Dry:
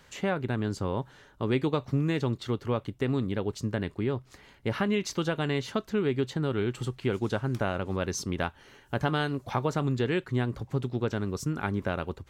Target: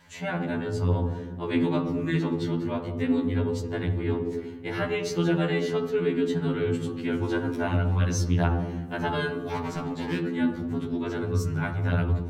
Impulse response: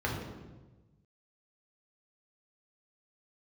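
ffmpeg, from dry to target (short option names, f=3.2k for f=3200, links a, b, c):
-filter_complex "[0:a]asettb=1/sr,asplit=3[a][b][c];[a]atrim=end=9.404[d];[b]atrim=start=9.4:end=10.19,asetpts=PTS-STARTPTS,afade=t=in:d=0.004:c=qsin,afade=t=out:st=0.786:d=0.004:c=qsin,asoftclip=type=hard:threshold=-27dB[e];[c]atrim=start=10.186[f];[d][e]acrossfade=d=0.004:c1=hsin:c2=qsin[g];[g][f]acrossfade=d=0.004:c1=qsin:c2=hsin,asplit=2[h][i];[1:a]atrim=start_sample=2205[j];[i][j]afir=irnorm=-1:irlink=0,volume=-8.5dB[k];[h][k]amix=inputs=2:normalize=0,afftfilt=real='re*2*eq(mod(b,4),0)':imag='im*2*eq(mod(b,4),0)':win_size=2048:overlap=0.75"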